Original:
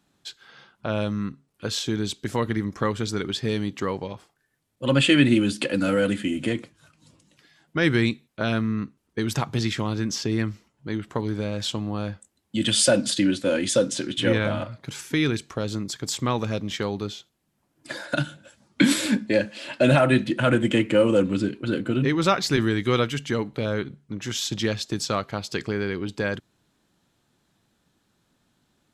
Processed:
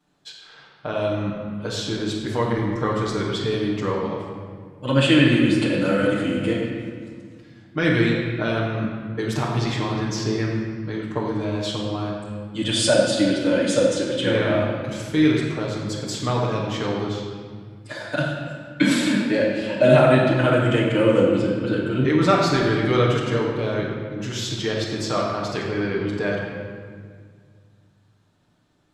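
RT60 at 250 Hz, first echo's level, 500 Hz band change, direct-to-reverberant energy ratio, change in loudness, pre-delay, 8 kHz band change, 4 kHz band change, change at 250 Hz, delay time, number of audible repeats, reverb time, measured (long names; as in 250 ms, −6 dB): 2.7 s, no echo audible, +4.5 dB, −10.0 dB, +2.5 dB, 7 ms, −3.0 dB, 0.0 dB, +2.5 dB, no echo audible, no echo audible, 1.8 s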